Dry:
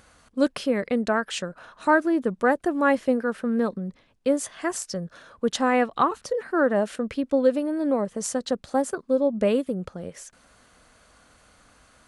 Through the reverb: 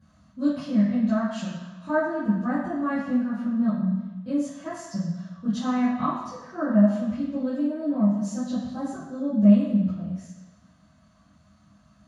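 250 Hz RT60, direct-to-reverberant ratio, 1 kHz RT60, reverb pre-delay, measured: 0.95 s, -13.5 dB, 1.2 s, 3 ms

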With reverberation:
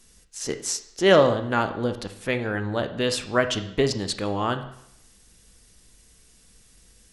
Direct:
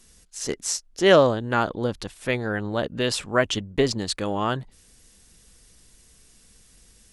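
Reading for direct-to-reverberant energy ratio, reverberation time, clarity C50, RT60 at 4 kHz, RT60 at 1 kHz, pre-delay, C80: 8.0 dB, 0.75 s, 11.5 dB, 0.70 s, 0.80 s, 14 ms, 14.0 dB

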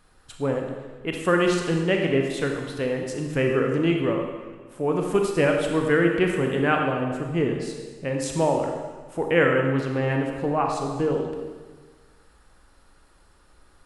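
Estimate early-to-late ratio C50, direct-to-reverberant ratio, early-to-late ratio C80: 3.0 dB, 1.5 dB, 5.0 dB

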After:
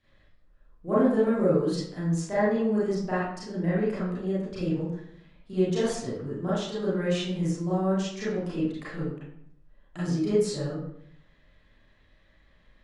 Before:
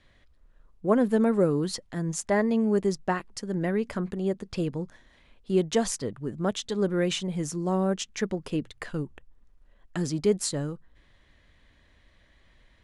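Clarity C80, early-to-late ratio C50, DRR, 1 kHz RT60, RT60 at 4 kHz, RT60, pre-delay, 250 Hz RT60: 4.5 dB, -0.5 dB, -11.0 dB, 0.70 s, 0.45 s, 0.70 s, 29 ms, 0.85 s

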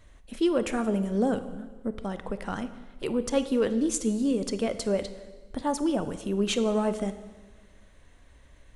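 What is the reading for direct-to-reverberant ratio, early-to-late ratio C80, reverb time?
11.0 dB, 14.0 dB, 1.4 s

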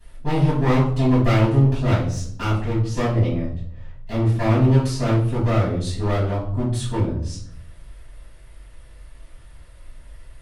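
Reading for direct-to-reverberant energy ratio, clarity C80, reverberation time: -12.0 dB, 8.5 dB, 0.60 s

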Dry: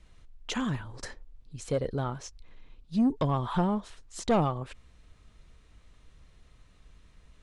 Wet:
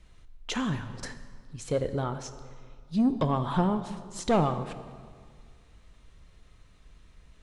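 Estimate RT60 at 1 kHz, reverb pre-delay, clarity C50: 1.9 s, 3 ms, 11.0 dB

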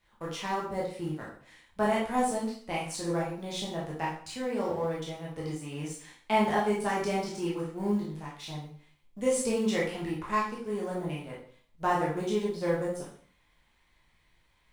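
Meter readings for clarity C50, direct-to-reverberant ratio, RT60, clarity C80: 4.0 dB, -5.5 dB, 0.50 s, 8.5 dB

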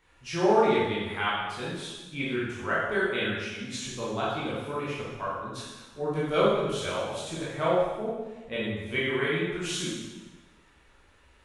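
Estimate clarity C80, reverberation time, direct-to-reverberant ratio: 2.0 dB, 1.2 s, -8.5 dB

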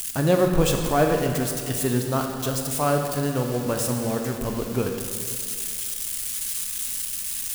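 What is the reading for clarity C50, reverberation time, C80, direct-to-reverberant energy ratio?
4.5 dB, 2.3 s, 5.5 dB, 3.0 dB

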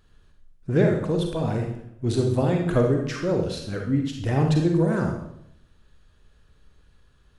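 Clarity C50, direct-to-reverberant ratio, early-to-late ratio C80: 3.0 dB, 1.5 dB, 7.5 dB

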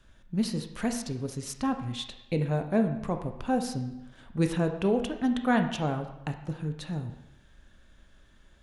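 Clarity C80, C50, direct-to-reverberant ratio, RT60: 11.0 dB, 8.5 dB, 6.0 dB, 0.90 s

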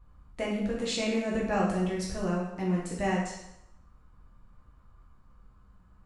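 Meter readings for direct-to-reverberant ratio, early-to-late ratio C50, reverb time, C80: -5.5 dB, 2.5 dB, 0.85 s, 5.5 dB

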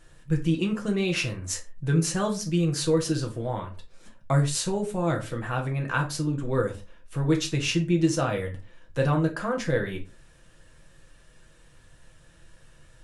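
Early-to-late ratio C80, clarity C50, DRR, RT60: 19.5 dB, 13.0 dB, 1.0 dB, not exponential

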